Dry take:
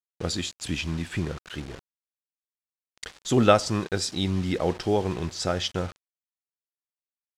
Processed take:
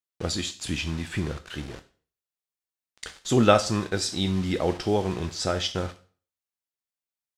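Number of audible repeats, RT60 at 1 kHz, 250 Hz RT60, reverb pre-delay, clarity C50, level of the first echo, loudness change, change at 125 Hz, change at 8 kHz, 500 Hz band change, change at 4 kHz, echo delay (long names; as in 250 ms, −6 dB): no echo audible, 0.45 s, 0.45 s, 7 ms, 16.0 dB, no echo audible, +0.5 dB, 0.0 dB, +1.0 dB, 0.0 dB, +1.0 dB, no echo audible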